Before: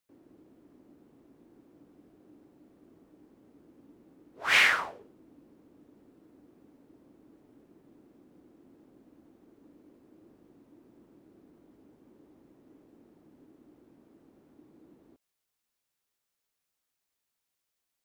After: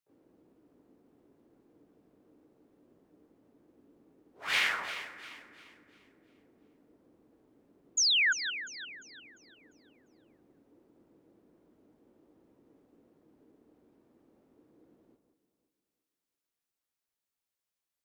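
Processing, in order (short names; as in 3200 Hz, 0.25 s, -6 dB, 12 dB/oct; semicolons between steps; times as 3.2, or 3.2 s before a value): harmoniser +7 st -7 dB; painted sound fall, 7.97–8.33, 1400–7100 Hz -18 dBFS; echo with dull and thin repeats by turns 0.174 s, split 1700 Hz, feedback 61%, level -7.5 dB; gain -7.5 dB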